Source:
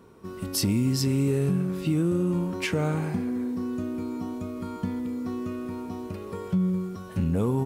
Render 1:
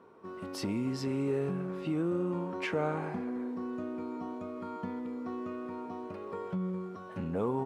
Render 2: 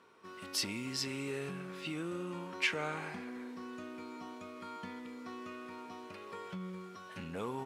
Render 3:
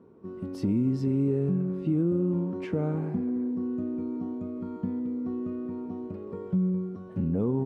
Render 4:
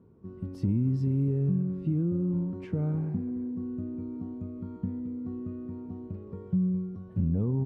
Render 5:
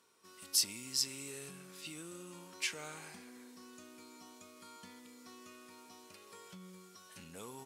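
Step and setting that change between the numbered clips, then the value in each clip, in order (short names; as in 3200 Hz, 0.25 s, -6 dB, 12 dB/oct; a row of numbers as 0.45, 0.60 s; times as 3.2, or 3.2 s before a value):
band-pass, frequency: 840, 2300, 280, 110, 7000 Hz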